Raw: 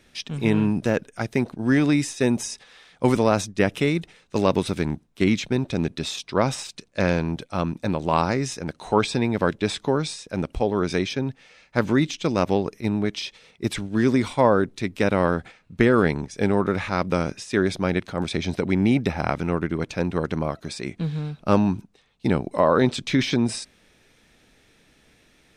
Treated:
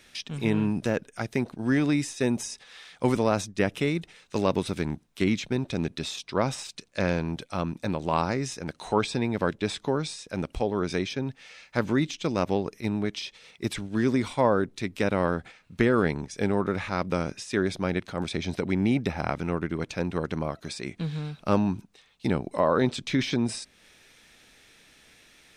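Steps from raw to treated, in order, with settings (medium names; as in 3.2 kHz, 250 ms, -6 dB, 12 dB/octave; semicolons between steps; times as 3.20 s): tape noise reduction on one side only encoder only; trim -4.5 dB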